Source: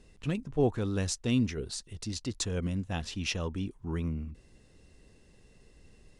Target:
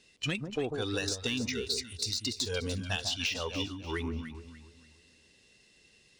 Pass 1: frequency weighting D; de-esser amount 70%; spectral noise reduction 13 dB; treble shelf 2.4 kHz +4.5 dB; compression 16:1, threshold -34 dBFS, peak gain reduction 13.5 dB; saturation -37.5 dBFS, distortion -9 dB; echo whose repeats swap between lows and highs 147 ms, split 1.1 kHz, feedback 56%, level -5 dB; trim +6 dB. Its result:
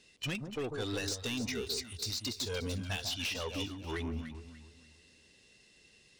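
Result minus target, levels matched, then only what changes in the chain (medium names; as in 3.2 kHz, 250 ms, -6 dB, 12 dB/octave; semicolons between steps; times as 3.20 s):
saturation: distortion +11 dB
change: saturation -26.5 dBFS, distortion -21 dB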